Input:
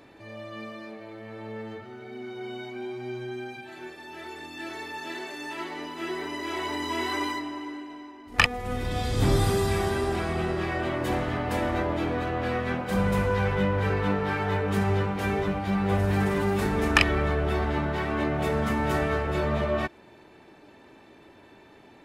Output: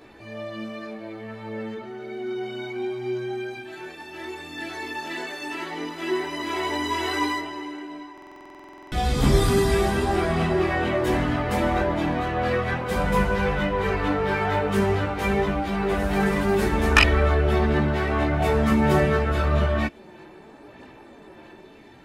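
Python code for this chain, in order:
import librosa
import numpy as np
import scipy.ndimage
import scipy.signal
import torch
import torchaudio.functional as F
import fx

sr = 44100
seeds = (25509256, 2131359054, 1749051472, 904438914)

y = fx.chorus_voices(x, sr, voices=6, hz=0.4, base_ms=16, depth_ms=2.9, mix_pct=50)
y = fx.buffer_glitch(y, sr, at_s=(8.13,), block=2048, repeats=16)
y = y * 10.0 ** (7.0 / 20.0)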